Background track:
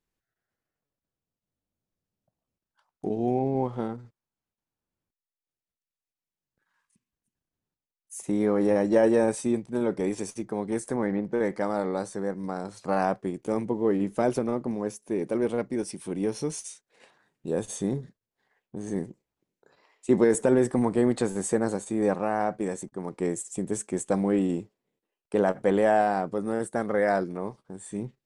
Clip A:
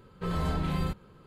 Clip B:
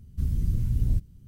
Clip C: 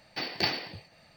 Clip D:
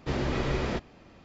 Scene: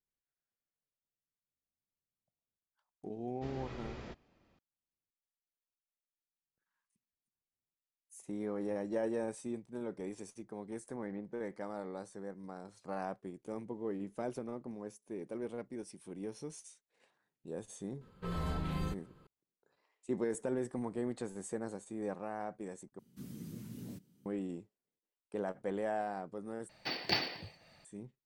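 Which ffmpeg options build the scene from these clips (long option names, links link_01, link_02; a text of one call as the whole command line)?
ffmpeg -i bed.wav -i cue0.wav -i cue1.wav -i cue2.wav -i cue3.wav -filter_complex "[0:a]volume=-14.5dB[link_01];[2:a]highpass=frequency=200:width=0.5412,highpass=frequency=200:width=1.3066[link_02];[link_01]asplit=3[link_03][link_04][link_05];[link_03]atrim=end=22.994[link_06];[link_02]atrim=end=1.27,asetpts=PTS-STARTPTS,volume=-4dB[link_07];[link_04]atrim=start=24.256:end=26.694[link_08];[3:a]atrim=end=1.16,asetpts=PTS-STARTPTS,volume=-4dB[link_09];[link_05]atrim=start=27.846[link_10];[4:a]atrim=end=1.24,asetpts=PTS-STARTPTS,volume=-17dB,afade=type=in:duration=0.004:curve=hsin,afade=type=out:start_time=1.236:duration=0.004:curve=hsin,adelay=3350[link_11];[1:a]atrim=end=1.26,asetpts=PTS-STARTPTS,volume=-7dB,afade=type=in:duration=0.004:curve=hsin,afade=type=out:start_time=1.256:duration=0.004:curve=hsin,adelay=18010[link_12];[link_06][link_07]acrossfade=duration=0.004:curve1=hsin:curve2=hsin[link_13];[link_13][link_08]acrossfade=duration=0.004:curve1=hsin:curve2=hsin[link_14];[link_14][link_09]acrossfade=duration=0.004:curve1=hsin:curve2=hsin[link_15];[link_15][link_10]acrossfade=duration=0.004:curve1=hsin:curve2=hsin[link_16];[link_16][link_11][link_12]amix=inputs=3:normalize=0" out.wav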